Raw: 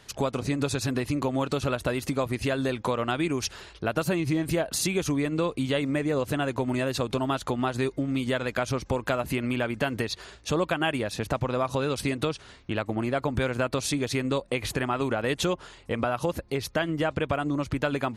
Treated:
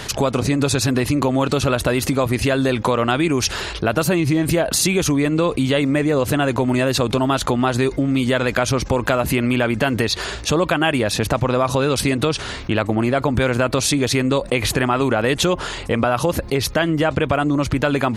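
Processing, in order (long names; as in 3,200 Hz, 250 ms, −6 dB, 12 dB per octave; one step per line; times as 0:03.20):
envelope flattener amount 50%
level +7 dB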